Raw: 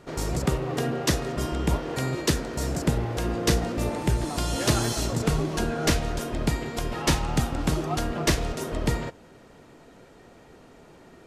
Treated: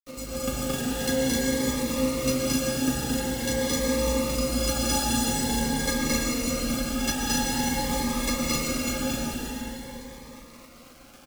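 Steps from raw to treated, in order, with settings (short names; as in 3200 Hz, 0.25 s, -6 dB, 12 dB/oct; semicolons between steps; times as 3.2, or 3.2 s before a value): vibrato 4.8 Hz 5.1 cents; metallic resonator 250 Hz, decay 0.22 s, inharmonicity 0.03; companded quantiser 4-bit; loudspeakers at several distances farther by 76 m -1 dB, 89 m -1 dB; reverb RT60 3.9 s, pre-delay 98 ms, DRR -1.5 dB; cascading phaser rising 0.47 Hz; gain +7.5 dB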